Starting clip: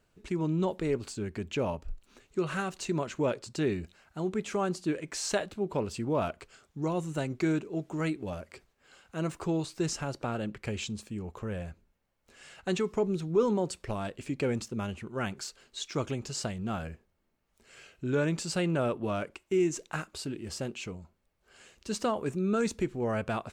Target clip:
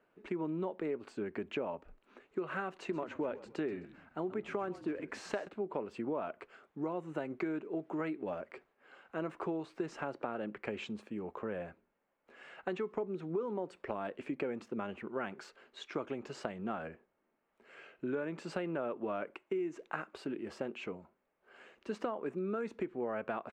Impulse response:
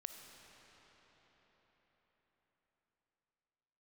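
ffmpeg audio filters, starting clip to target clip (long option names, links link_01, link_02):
-filter_complex "[0:a]acrossover=split=220 2500:gain=0.0708 1 0.0631[link_01][link_02][link_03];[link_01][link_02][link_03]amix=inputs=3:normalize=0,acompressor=threshold=-36dB:ratio=6,asplit=3[link_04][link_05][link_06];[link_04]afade=type=out:start_time=2.88:duration=0.02[link_07];[link_05]asplit=4[link_08][link_09][link_10][link_11];[link_09]adelay=130,afreqshift=-47,volume=-16dB[link_12];[link_10]adelay=260,afreqshift=-94,volume=-24.2dB[link_13];[link_11]adelay=390,afreqshift=-141,volume=-32.4dB[link_14];[link_08][link_12][link_13][link_14]amix=inputs=4:normalize=0,afade=type=in:start_time=2.88:duration=0.02,afade=type=out:start_time=5.47:duration=0.02[link_15];[link_06]afade=type=in:start_time=5.47:duration=0.02[link_16];[link_07][link_15][link_16]amix=inputs=3:normalize=0,volume=2.5dB"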